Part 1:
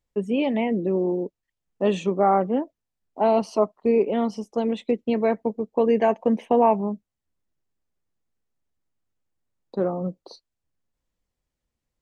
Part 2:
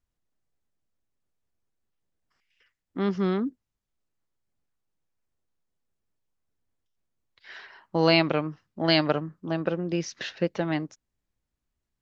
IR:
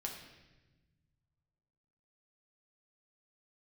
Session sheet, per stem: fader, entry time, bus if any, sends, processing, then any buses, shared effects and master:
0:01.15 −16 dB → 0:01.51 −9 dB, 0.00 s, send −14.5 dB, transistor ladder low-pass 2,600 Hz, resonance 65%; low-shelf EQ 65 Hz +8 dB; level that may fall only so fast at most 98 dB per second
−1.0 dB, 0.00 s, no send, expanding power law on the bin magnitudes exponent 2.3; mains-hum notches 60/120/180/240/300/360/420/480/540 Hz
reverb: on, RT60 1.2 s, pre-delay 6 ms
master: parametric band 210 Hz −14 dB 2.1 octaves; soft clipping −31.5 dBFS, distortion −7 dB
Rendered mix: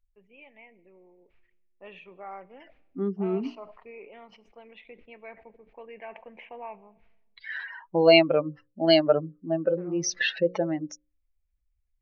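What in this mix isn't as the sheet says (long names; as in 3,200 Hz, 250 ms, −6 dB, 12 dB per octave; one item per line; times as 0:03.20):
stem 2 −1.0 dB → +10.0 dB
master: missing soft clipping −31.5 dBFS, distortion −7 dB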